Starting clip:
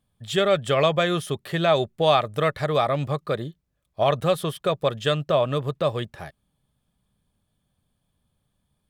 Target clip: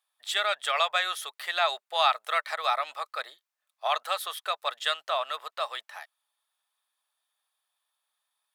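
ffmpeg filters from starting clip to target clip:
-af "highpass=f=830:w=0.5412,highpass=f=830:w=1.3066,asetrate=45938,aresample=44100"

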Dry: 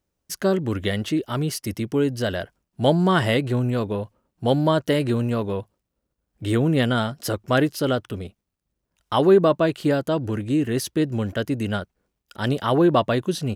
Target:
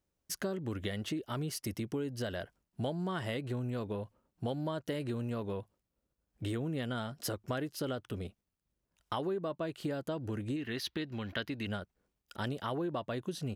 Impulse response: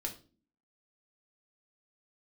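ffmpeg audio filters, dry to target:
-filter_complex "[0:a]acompressor=threshold=-28dB:ratio=6,asettb=1/sr,asplit=3[a][b][c];[a]atrim=end=10.564[d];[b]atrim=start=10.56:end=11.67,asetpts=PTS-STARTPTS,afade=t=in:d=0.004:c=qsin,afade=t=out:st=1.106:d=0.004:c=qsin,equalizer=f=125:t=o:w=1:g=-4,equalizer=f=500:t=o:w=1:g=-4,equalizer=f=1k:t=o:w=1:g=3,equalizer=f=2k:t=o:w=1:g=6,equalizer=f=4k:t=o:w=1:g=11,equalizer=f=8k:t=o:w=1:g=-12[e];[c]atrim=start=11.666[f];[d][e]acrossfade=d=0.004:c1=hsin:c2=qsin[g];[g][f]acrossfade=d=0.004:c1=qsin:c2=hsin,volume=-5.5dB"

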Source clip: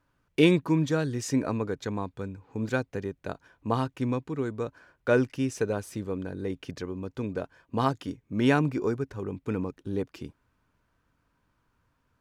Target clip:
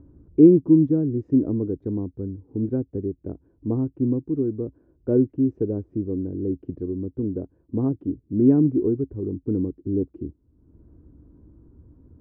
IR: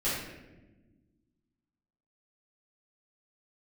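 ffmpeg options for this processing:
-af "acompressor=mode=upward:threshold=-40dB:ratio=2.5,lowpass=f=330:t=q:w=3.4,equalizer=f=67:t=o:w=1:g=12"

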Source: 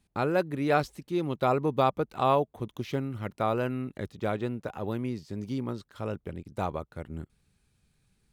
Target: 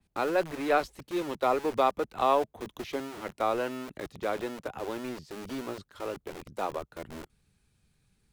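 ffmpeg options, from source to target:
-filter_complex "[0:a]acrossover=split=250|470|2100[a][b][c][d];[a]aeval=exprs='(mod(89.1*val(0)+1,2)-1)/89.1':c=same[e];[e][b][c][d]amix=inputs=4:normalize=0,adynamicequalizer=threshold=0.00501:dfrequency=3700:dqfactor=0.7:tfrequency=3700:tqfactor=0.7:attack=5:release=100:ratio=0.375:range=1.5:mode=cutabove:tftype=highshelf"

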